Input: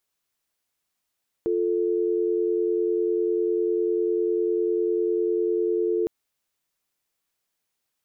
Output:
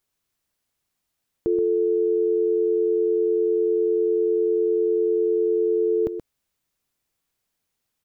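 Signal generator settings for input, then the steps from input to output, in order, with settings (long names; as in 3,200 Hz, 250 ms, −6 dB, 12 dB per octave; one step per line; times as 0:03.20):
call progress tone dial tone, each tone −23.5 dBFS 4.61 s
low-shelf EQ 260 Hz +9 dB
on a send: single-tap delay 127 ms −9.5 dB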